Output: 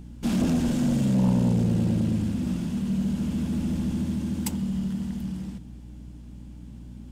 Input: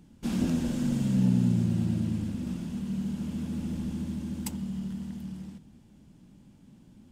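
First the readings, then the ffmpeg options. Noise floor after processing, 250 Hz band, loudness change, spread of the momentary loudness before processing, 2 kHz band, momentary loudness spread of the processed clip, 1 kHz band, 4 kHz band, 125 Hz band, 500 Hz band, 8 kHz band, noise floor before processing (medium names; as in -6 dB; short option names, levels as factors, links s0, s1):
-43 dBFS, +4.5 dB, +4.0 dB, 12 LU, +5.0 dB, 21 LU, +7.5 dB, +5.0 dB, +4.0 dB, +7.5 dB, +5.0 dB, -56 dBFS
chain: -af "acontrast=79,aeval=exprs='val(0)+0.00891*(sin(2*PI*60*n/s)+sin(2*PI*2*60*n/s)/2+sin(2*PI*3*60*n/s)/3+sin(2*PI*4*60*n/s)/4+sin(2*PI*5*60*n/s)/5)':c=same,aeval=exprs='0.376*(cos(1*acos(clip(val(0)/0.376,-1,1)))-cos(1*PI/2))+0.0531*(cos(5*acos(clip(val(0)/0.376,-1,1)))-cos(5*PI/2))':c=same,volume=0.562"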